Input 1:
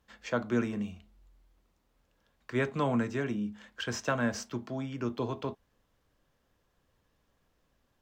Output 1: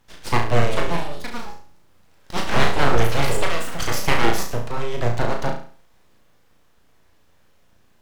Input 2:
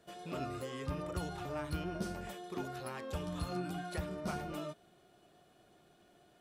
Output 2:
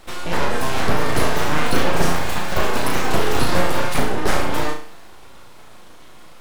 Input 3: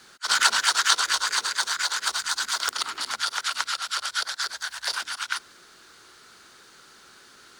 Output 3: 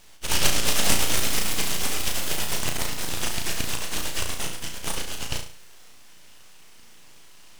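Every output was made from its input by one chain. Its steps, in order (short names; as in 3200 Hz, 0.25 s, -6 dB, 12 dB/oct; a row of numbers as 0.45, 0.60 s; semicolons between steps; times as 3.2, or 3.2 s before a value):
echoes that change speed 0.539 s, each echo +6 st, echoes 2, each echo -6 dB; full-wave rectifier; flutter echo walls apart 6 m, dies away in 0.44 s; normalise peaks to -2 dBFS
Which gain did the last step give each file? +12.0, +20.5, 0.0 dB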